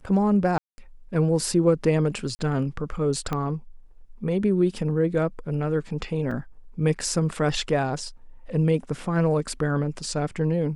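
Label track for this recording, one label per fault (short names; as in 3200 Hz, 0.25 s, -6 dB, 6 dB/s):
0.580000	0.780000	gap 0.2 s
2.350000	2.390000	gap 40 ms
3.330000	3.330000	pop -14 dBFS
6.310000	6.310000	gap 3.8 ms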